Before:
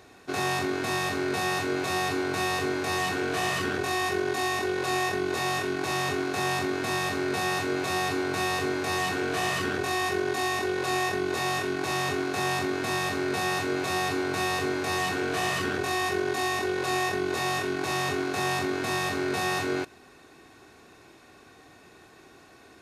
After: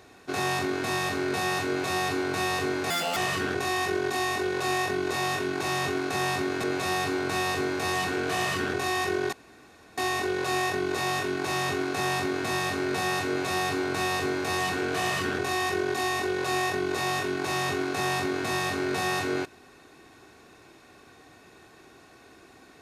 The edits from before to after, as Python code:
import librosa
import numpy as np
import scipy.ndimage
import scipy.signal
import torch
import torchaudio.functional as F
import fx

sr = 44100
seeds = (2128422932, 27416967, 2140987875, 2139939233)

y = fx.edit(x, sr, fx.speed_span(start_s=2.9, length_s=0.5, speed=1.88),
    fx.cut(start_s=6.87, length_s=0.81),
    fx.insert_room_tone(at_s=10.37, length_s=0.65), tone=tone)